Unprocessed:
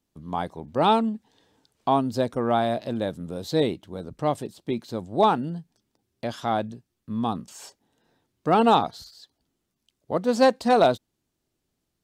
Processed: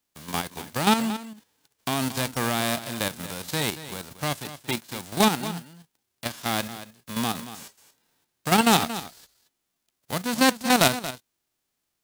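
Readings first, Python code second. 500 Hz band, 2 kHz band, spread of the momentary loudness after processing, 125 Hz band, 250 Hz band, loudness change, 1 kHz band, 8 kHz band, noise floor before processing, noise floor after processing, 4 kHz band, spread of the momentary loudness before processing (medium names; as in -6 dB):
-6.5 dB, +7.5 dB, 16 LU, +0.5 dB, 0.0 dB, -1.0 dB, -3.0 dB, +16.0 dB, -79 dBFS, -79 dBFS, +7.5 dB, 15 LU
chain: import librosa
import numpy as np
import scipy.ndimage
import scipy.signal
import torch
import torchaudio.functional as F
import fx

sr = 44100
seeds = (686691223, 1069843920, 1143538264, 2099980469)

y = fx.envelope_flatten(x, sr, power=0.3)
y = fx.level_steps(y, sr, step_db=9)
y = y + 10.0 ** (-13.5 / 20.0) * np.pad(y, (int(229 * sr / 1000.0), 0))[:len(y)]
y = y * 10.0 ** (1.5 / 20.0)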